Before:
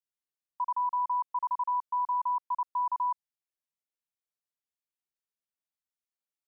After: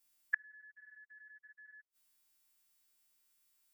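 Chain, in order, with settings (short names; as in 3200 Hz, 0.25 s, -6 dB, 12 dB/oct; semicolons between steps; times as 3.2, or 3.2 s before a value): frequency quantiser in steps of 2 st; speed mistake 45 rpm record played at 78 rpm; flipped gate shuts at -31 dBFS, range -41 dB; gain +13 dB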